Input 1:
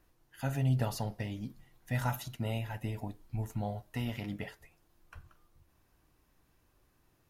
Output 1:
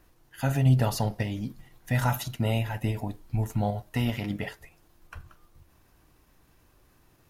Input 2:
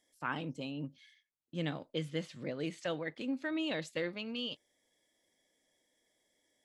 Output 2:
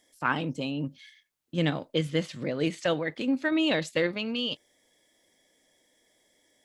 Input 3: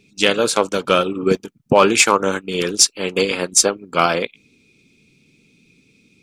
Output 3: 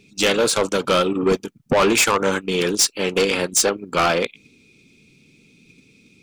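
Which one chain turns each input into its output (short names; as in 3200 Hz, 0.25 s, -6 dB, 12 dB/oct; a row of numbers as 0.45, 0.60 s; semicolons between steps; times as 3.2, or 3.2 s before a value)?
in parallel at +0.5 dB: level quantiser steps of 9 dB; on the sum: soft clip -11 dBFS; normalise peaks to -12 dBFS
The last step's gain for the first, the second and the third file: +3.5, +5.0, -1.0 dB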